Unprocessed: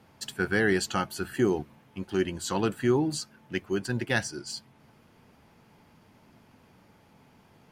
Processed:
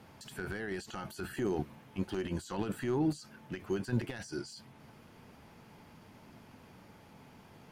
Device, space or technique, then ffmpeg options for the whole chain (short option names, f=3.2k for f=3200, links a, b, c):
de-esser from a sidechain: -filter_complex "[0:a]asplit=2[a][b];[b]highpass=f=5.1k:p=1,apad=whole_len=340215[c];[a][c]sidechaincompress=threshold=-50dB:ratio=12:attack=0.55:release=25,volume=2.5dB"